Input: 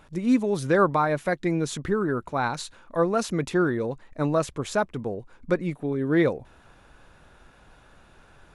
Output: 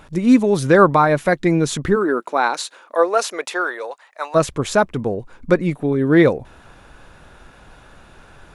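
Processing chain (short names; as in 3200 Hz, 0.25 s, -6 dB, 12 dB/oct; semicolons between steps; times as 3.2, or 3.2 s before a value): 1.95–4.34 HPF 250 Hz -> 770 Hz 24 dB/oct; gain +8.5 dB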